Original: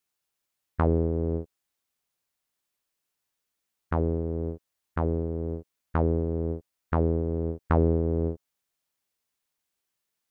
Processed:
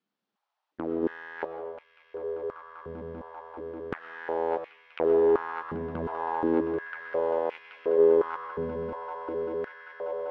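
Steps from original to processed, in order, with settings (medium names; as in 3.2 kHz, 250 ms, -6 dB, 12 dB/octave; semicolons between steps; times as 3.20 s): peaking EQ 2 kHz -4.5 dB 0.95 oct; compressor with a negative ratio -36 dBFS, ratio -1; waveshaping leveller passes 3; in parallel at +2 dB: level held to a coarse grid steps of 14 dB; on the sum: formant shift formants +2 st; distance through air 260 m; on a send: echo with a slow build-up 196 ms, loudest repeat 8, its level -13.5 dB; on the sum: algorithmic reverb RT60 1.1 s, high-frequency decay 0.7×, pre-delay 65 ms, DRR 6.5 dB; step-sequenced high-pass 2.8 Hz 210–2400 Hz; trim -4 dB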